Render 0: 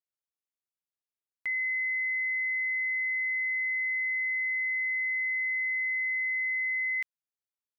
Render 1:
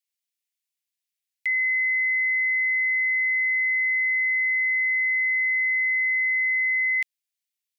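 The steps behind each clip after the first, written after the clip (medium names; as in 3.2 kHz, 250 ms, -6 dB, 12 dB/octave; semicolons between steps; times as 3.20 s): steep high-pass 1.9 kHz; trim +8.5 dB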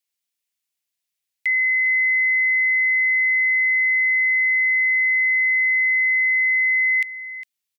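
delay 406 ms -14 dB; trim +4 dB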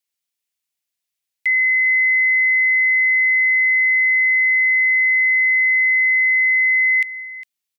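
dynamic bell 2 kHz, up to +3 dB, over -31 dBFS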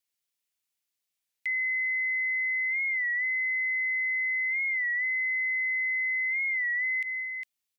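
peak limiter -23 dBFS, peak gain reduction 11 dB; warped record 33 1/3 rpm, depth 100 cents; trim -2.5 dB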